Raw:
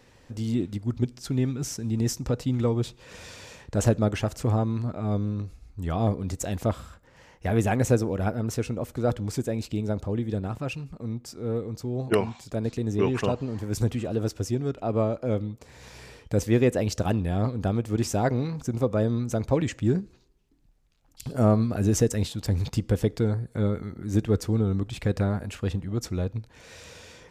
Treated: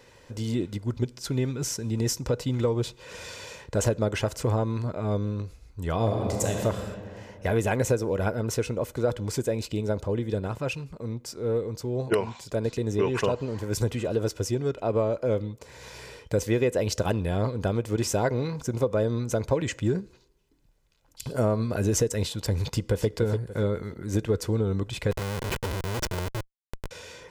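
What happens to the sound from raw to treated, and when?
5.96–6.64 reverb throw, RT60 2.6 s, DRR 1 dB
22.67–23.07 echo throw 0.29 s, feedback 30%, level -8.5 dB
25.11–26.91 Schmitt trigger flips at -35.5 dBFS
whole clip: low shelf 120 Hz -8.5 dB; comb 2 ms, depth 38%; compressor 5:1, threshold -23 dBFS; gain +3 dB

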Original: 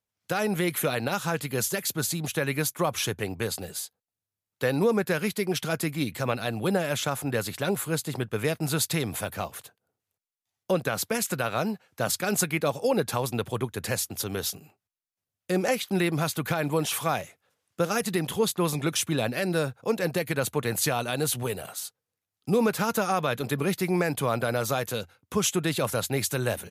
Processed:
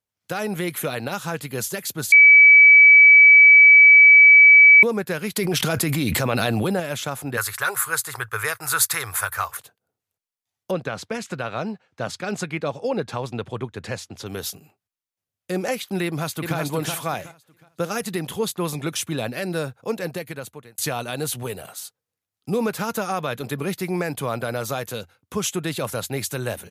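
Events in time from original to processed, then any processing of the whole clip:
2.12–4.83 bleep 2290 Hz -6.5 dBFS
5.36–6.8 fast leveller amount 100%
7.37–9.57 EQ curve 110 Hz 0 dB, 210 Hz -25 dB, 440 Hz -4 dB, 640 Hz -5 dB, 1200 Hz +14 dB, 1700 Hz +12 dB, 2900 Hz 0 dB, 9600 Hz +10 dB
10.71–14.26 air absorption 95 m
16.05–16.57 echo throw 0.37 s, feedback 25%, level -3.5 dB
19.93–20.78 fade out

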